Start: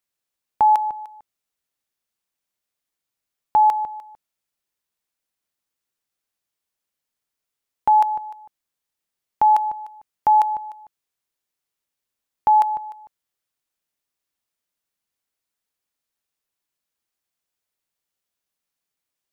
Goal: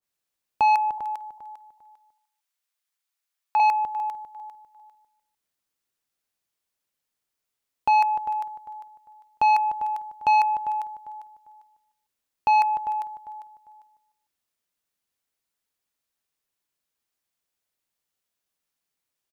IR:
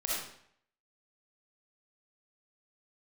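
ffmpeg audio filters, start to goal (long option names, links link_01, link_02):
-filter_complex "[0:a]asettb=1/sr,asplit=3[link_01][link_02][link_03];[link_01]atrim=end=0.984[link_04];[link_02]atrim=start=0.98:end=3.6,asetpts=PTS-STARTPTS,afade=type=in:duration=0.004:curve=qsin,afade=type=out:start_time=2.616:duration=0.004:curve=qsin,highpass=890[link_05];[link_03]atrim=start=3.596[link_06];[link_04][link_05]acrossfade=duration=0.004:curve1=hsin:curve2=qsin[link_07];[link_07][link_06]acrossfade=duration=0.004:curve1=qsin:curve2=hsin,aecho=1:1:399|798|1197:0.188|0.049|0.0127,asoftclip=type=tanh:threshold=-15dB,adynamicequalizer=threshold=0.0251:dfrequency=1600:dqfactor=0.7:tfrequency=1600:tqfactor=0.7:attack=5:release=100:ratio=0.375:range=2:mode=boostabove:tftype=highshelf"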